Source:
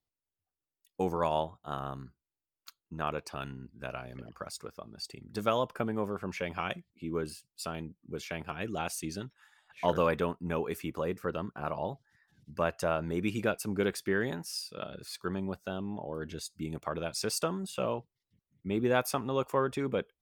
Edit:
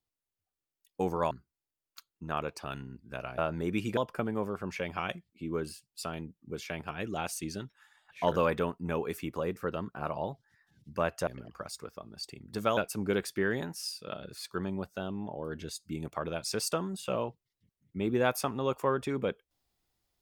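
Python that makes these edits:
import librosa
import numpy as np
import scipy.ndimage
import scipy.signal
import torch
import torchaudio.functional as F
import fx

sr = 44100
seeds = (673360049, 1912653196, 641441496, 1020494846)

y = fx.edit(x, sr, fx.cut(start_s=1.31, length_s=0.7),
    fx.swap(start_s=4.08, length_s=1.5, other_s=12.88, other_length_s=0.59), tone=tone)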